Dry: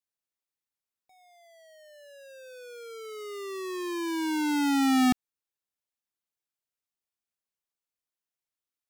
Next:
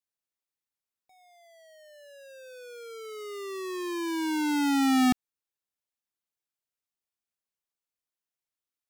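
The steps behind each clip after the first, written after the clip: no audible change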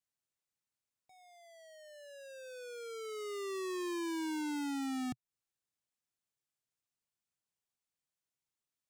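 ten-band graphic EQ 125 Hz +9 dB, 8 kHz +5 dB, 16 kHz -6 dB; compression 10:1, threshold -31 dBFS, peak gain reduction 12.5 dB; saturation -32 dBFS, distortion -17 dB; trim -2 dB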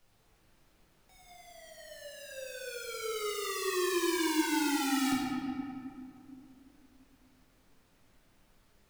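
spectral contrast reduction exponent 0.62; added noise pink -73 dBFS; reverberation RT60 2.5 s, pre-delay 6 ms, DRR -5 dB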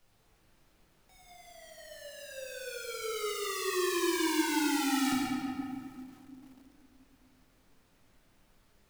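bit-crushed delay 139 ms, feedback 35%, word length 9-bit, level -8 dB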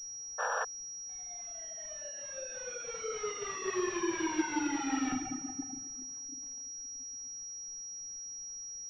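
reverb removal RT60 1.7 s; painted sound noise, 0.38–0.65 s, 440–1800 Hz -33 dBFS; class-D stage that switches slowly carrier 5.7 kHz

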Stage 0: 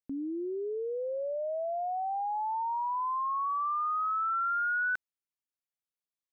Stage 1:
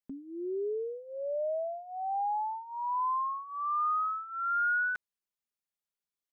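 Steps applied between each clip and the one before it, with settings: comb 4.9 ms, depth 76%; trim -3 dB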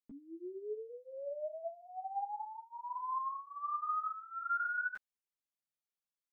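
three-phase chorus; trim -4 dB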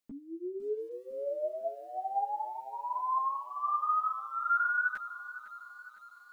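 bit-crushed delay 505 ms, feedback 55%, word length 11-bit, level -14 dB; trim +6.5 dB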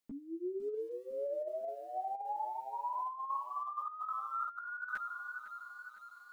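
compressor with a negative ratio -34 dBFS, ratio -0.5; trim -3 dB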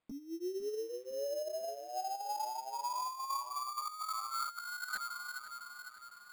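sample-rate reducer 5.8 kHz, jitter 0%

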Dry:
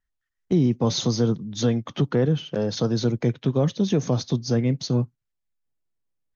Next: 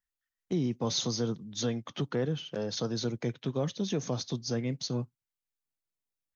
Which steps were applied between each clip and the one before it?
tilt EQ +1.5 dB/octave; trim -7 dB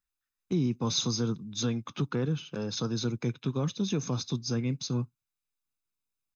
comb 0.8 ms, depth 55%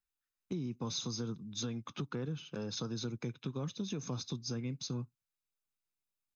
compression, threshold -30 dBFS, peak gain reduction 7 dB; trim -4.5 dB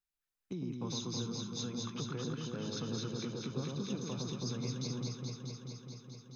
echo whose repeats swap between lows and highs 107 ms, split 1.1 kHz, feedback 88%, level -2 dB; trim -3 dB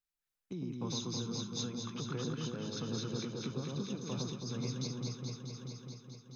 random flutter of the level, depth 55%; trim +3 dB

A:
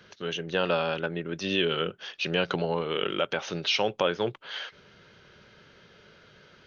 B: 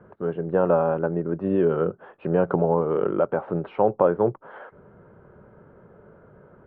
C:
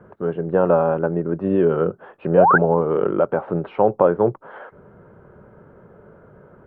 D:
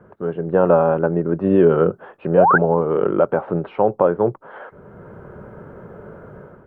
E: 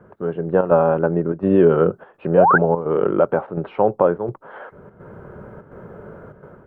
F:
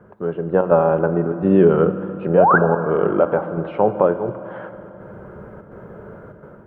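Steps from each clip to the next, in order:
low-pass 1.1 kHz 24 dB/octave; trim +7.5 dB
painted sound rise, 2.36–2.58 s, 460–1700 Hz -17 dBFS; trim +3.5 dB
level rider gain up to 9.5 dB; trim -1 dB
square tremolo 1.4 Hz, depth 60%, duty 85%
reverberation RT60 3.5 s, pre-delay 5 ms, DRR 10 dB

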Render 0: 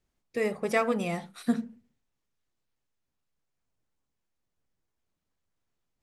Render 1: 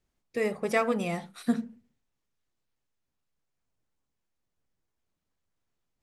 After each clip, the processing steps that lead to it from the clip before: no audible change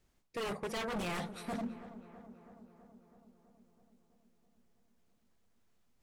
reverse; compression 10:1, threshold -35 dBFS, peak gain reduction 15.5 dB; reverse; wavefolder -37.5 dBFS; filtered feedback delay 327 ms, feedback 71%, low-pass 2.1 kHz, level -13.5 dB; trim +5.5 dB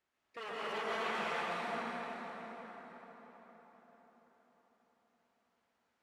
tracing distortion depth 0.033 ms; band-pass filter 1.5 kHz, Q 0.71; plate-style reverb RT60 4.7 s, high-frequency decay 0.7×, pre-delay 110 ms, DRR -8.5 dB; trim -3 dB

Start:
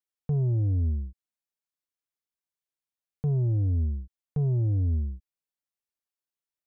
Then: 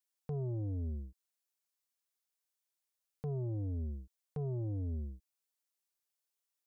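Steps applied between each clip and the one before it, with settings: tone controls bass -11 dB, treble +6 dB; in parallel at -2.5 dB: peak limiter -36 dBFS, peak gain reduction 8 dB; on the sum: trim -5 dB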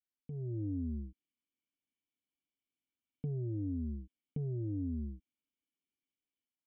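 level rider gain up to 10 dB; cascade formant filter i; compression, threshold -37 dBFS, peak gain reduction 5.5 dB; trim +4 dB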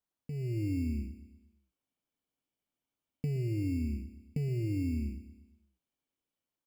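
in parallel at -4 dB: sample-and-hold 18×; on the sum: feedback delay 119 ms, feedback 50%, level -13.5 dB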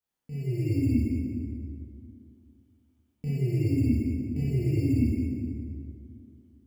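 reverberation RT60 2.7 s, pre-delay 12 ms, DRR -10 dB; trim -3.5 dB

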